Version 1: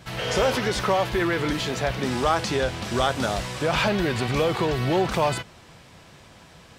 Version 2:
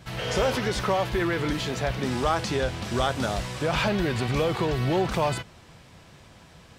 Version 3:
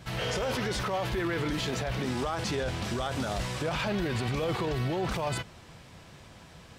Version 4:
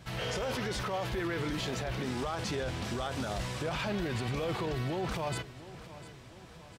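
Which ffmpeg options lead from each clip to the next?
-af "lowshelf=f=180:g=4.5,volume=0.708"
-af "alimiter=limit=0.075:level=0:latency=1:release=16"
-af "aecho=1:1:700|1400|2100|2800:0.158|0.0777|0.0381|0.0186,volume=0.668"

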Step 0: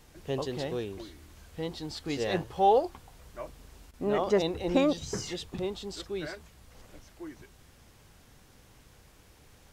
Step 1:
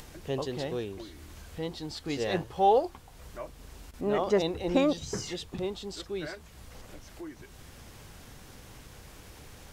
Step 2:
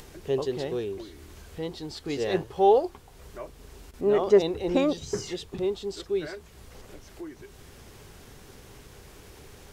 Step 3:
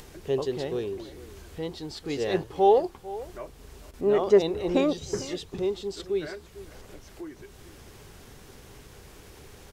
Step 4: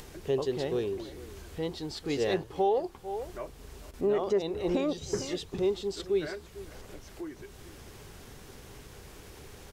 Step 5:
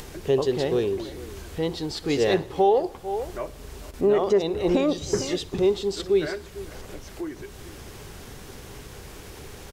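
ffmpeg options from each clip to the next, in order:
-af "acompressor=mode=upward:threshold=0.0112:ratio=2.5"
-af "equalizer=f=400:t=o:w=0.29:g=9"
-filter_complex "[0:a]asplit=2[s0][s1];[s1]adelay=449,volume=0.141,highshelf=f=4000:g=-10.1[s2];[s0][s2]amix=inputs=2:normalize=0"
-af "alimiter=limit=0.119:level=0:latency=1:release=387"
-af "aecho=1:1:61|122|183|244|305:0.0891|0.0517|0.03|0.0174|0.0101,volume=2.24"

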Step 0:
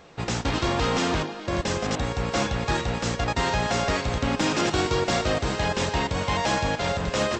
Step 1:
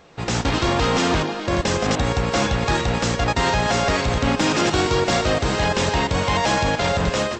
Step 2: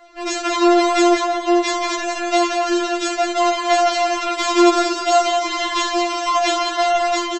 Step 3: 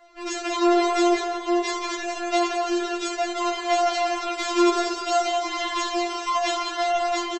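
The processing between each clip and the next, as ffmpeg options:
-af "alimiter=limit=0.106:level=0:latency=1:release=69,dynaudnorm=f=100:g=5:m=2.66"
-filter_complex "[0:a]acrossover=split=300|2800[s0][s1][s2];[s0]alimiter=limit=0.0841:level=0:latency=1:release=235[s3];[s3][s1][s2]amix=inputs=3:normalize=0,aecho=1:1:184:0.398,afftfilt=real='re*4*eq(mod(b,16),0)':imag='im*4*eq(mod(b,16),0)':win_size=2048:overlap=0.75,volume=1.58"
-filter_complex "[0:a]flanger=delay=7.6:depth=1.2:regen=-50:speed=0.62:shape=triangular,asplit=4[s0][s1][s2][s3];[s1]adelay=95,afreqshift=39,volume=0.0794[s4];[s2]adelay=190,afreqshift=78,volume=0.0285[s5];[s3]adelay=285,afreqshift=117,volume=0.0104[s6];[s0][s4][s5][s6]amix=inputs=4:normalize=0,volume=0.75"

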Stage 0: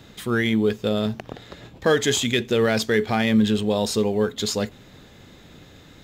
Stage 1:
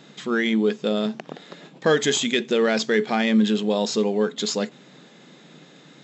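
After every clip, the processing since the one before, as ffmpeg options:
-af "afftfilt=real='re*between(b*sr/4096,130,7900)':imag='im*between(b*sr/4096,130,7900)':win_size=4096:overlap=0.75"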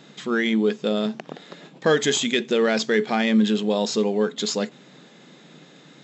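-af anull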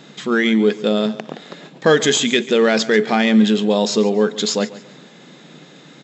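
-af "aecho=1:1:140|280|420:0.133|0.0427|0.0137,volume=1.88"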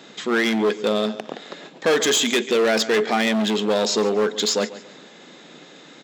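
-af "volume=5.01,asoftclip=hard,volume=0.2,highpass=270"

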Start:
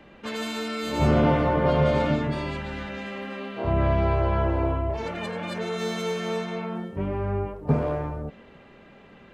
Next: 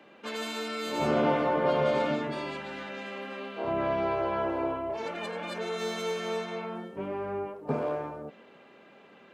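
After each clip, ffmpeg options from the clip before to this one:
-af "highpass=270,bandreject=f=1900:w=16,volume=0.75"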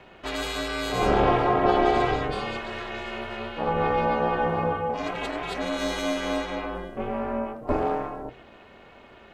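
-af "bandreject=f=60:t=h:w=6,bandreject=f=120:t=h:w=6,bandreject=f=180:t=h:w=6,bandreject=f=240:t=h:w=6,bandreject=f=300:t=h:w=6,aeval=exprs='val(0)*sin(2*PI*170*n/s)':c=same,volume=2.51"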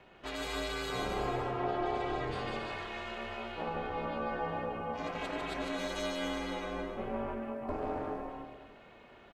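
-af "acompressor=threshold=0.0631:ratio=5,aecho=1:1:150|270|366|442.8|504.2:0.631|0.398|0.251|0.158|0.1,volume=0.376"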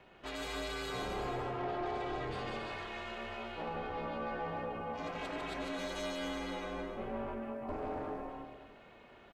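-af "asoftclip=type=tanh:threshold=0.0376,volume=0.841"

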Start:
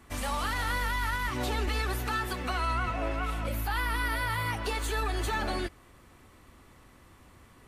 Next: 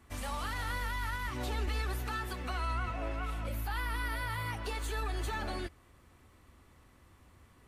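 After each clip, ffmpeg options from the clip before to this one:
-af "equalizer=f=74:w=1.5:g=5.5,volume=0.473"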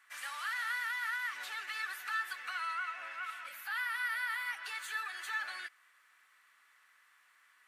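-af "highpass=f=1600:t=q:w=2.8,volume=0.75"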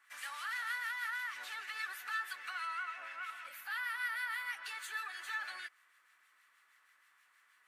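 -filter_complex "[0:a]acrossover=split=1400[s0][s1];[s0]aeval=exprs='val(0)*(1-0.5/2+0.5/2*cos(2*PI*6.3*n/s))':c=same[s2];[s1]aeval=exprs='val(0)*(1-0.5/2-0.5/2*cos(2*PI*6.3*n/s))':c=same[s3];[s2][s3]amix=inputs=2:normalize=0"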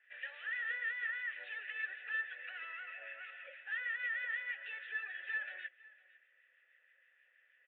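-filter_complex "[0:a]aresample=8000,volume=44.7,asoftclip=hard,volume=0.0224,aresample=44100,asplit=3[s0][s1][s2];[s0]bandpass=f=530:t=q:w=8,volume=1[s3];[s1]bandpass=f=1840:t=q:w=8,volume=0.501[s4];[s2]bandpass=f=2480:t=q:w=8,volume=0.355[s5];[s3][s4][s5]amix=inputs=3:normalize=0,aecho=1:1:505:0.0841,volume=3.35"

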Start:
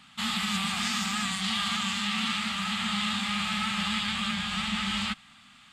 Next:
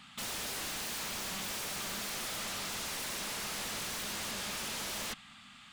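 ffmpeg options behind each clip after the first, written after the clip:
-af "aeval=exprs='0.02*(abs(mod(val(0)/0.02+3,4)-2)-1)':c=same"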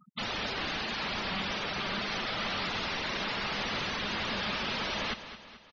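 -filter_complex "[0:a]lowpass=4700,afftfilt=real='re*gte(hypot(re,im),0.00891)':imag='im*gte(hypot(re,im),0.00891)':win_size=1024:overlap=0.75,asplit=2[s0][s1];[s1]aecho=0:1:216|432|648|864|1080:0.237|0.119|0.0593|0.0296|0.0148[s2];[s0][s2]amix=inputs=2:normalize=0,volume=2.51"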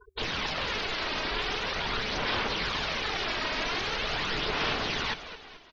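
-af "bandreject=f=50:t=h:w=6,bandreject=f=100:t=h:w=6,bandreject=f=150:t=h:w=6,aeval=exprs='val(0)*sin(2*PI*230*n/s)':c=same,aphaser=in_gain=1:out_gain=1:delay=3.2:decay=0.35:speed=0.43:type=sinusoidal,volume=1.78"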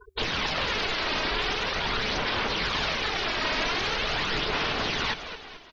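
-af "alimiter=limit=0.0794:level=0:latency=1:release=92,volume=1.68"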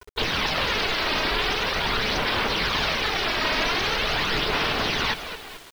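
-af "acrusher=bits=7:mix=0:aa=0.000001,volume=1.5"

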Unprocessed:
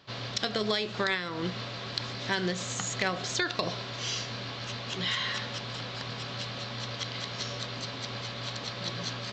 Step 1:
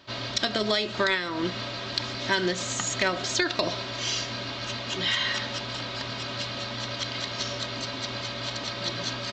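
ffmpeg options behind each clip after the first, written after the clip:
-af "aecho=1:1:3.2:0.52,volume=1.5"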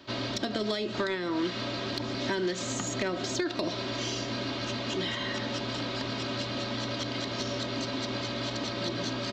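-filter_complex "[0:a]equalizer=f=300:t=o:w=1.2:g=8,acrossover=split=400|970[s0][s1][s2];[s0]acompressor=threshold=0.0251:ratio=4[s3];[s1]acompressor=threshold=0.0178:ratio=4[s4];[s2]acompressor=threshold=0.02:ratio=4[s5];[s3][s4][s5]amix=inputs=3:normalize=0,asoftclip=type=tanh:threshold=0.126"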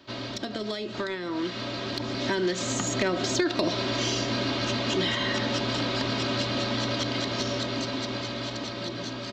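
-af "dynaudnorm=f=630:g=7:m=2.37,volume=0.794"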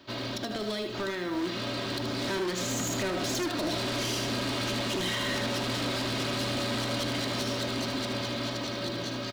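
-filter_complex "[0:a]asoftclip=type=hard:threshold=0.0355,acrusher=bits=7:mode=log:mix=0:aa=0.000001,asplit=2[s0][s1];[s1]aecho=0:1:77:0.447[s2];[s0][s2]amix=inputs=2:normalize=0"

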